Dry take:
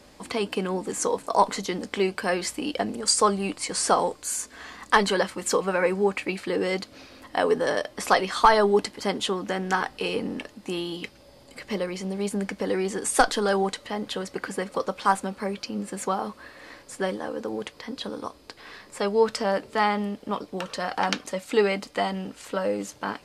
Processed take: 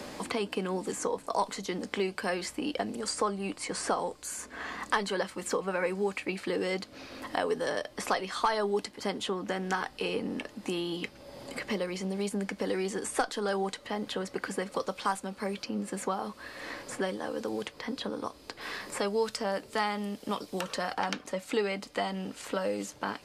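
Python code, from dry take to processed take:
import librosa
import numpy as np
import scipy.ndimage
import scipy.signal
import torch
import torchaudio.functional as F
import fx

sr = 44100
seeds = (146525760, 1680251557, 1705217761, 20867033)

y = fx.high_shelf(x, sr, hz=4300.0, db=10.0, at=(18.61, 20.94))
y = fx.band_squash(y, sr, depth_pct=70)
y = F.gain(torch.from_numpy(y), -6.5).numpy()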